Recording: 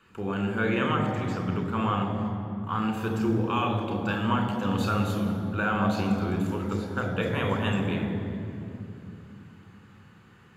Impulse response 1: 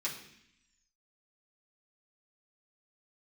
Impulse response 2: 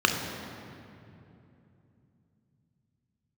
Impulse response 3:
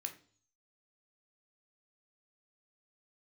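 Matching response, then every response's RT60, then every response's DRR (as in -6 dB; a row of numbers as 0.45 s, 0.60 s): 2; 0.70 s, 2.8 s, 0.45 s; -7.0 dB, 2.5 dB, 5.0 dB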